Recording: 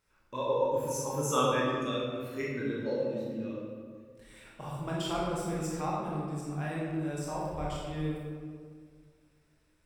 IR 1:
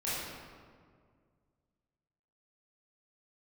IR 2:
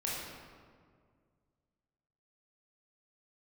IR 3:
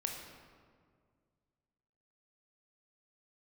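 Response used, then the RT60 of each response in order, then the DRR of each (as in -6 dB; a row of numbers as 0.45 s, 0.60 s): 2; 2.0 s, 2.0 s, 2.0 s; -10.5 dB, -6.0 dB, 1.5 dB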